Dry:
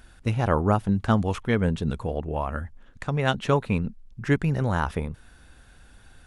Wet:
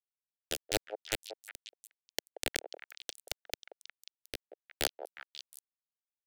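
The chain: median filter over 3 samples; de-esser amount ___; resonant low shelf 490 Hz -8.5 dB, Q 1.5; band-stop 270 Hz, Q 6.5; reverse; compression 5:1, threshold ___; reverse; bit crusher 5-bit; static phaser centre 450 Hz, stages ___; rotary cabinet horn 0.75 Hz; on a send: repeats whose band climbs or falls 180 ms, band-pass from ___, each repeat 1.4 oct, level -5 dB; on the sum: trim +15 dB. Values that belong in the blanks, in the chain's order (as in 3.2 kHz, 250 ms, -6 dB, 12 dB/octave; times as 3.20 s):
85%, -40 dBFS, 4, 590 Hz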